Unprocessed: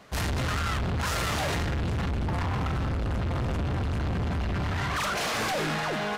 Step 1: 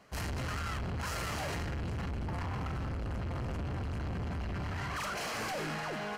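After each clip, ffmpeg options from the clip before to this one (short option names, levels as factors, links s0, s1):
-af "bandreject=f=3600:w=7.6,volume=0.398"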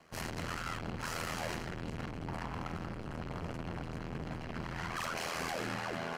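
-filter_complex "[0:a]acrossover=split=120|4600[s0][s1][s2];[s0]alimiter=level_in=11.2:limit=0.0631:level=0:latency=1,volume=0.0891[s3];[s3][s1][s2]amix=inputs=3:normalize=0,aeval=exprs='val(0)*sin(2*PI*41*n/s)':c=same,volume=1.26"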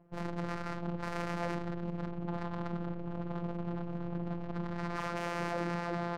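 -af "afftfilt=real='hypot(re,im)*cos(PI*b)':imag='0':win_size=1024:overlap=0.75,adynamicsmooth=sensitivity=3:basefreq=500,volume=2.37"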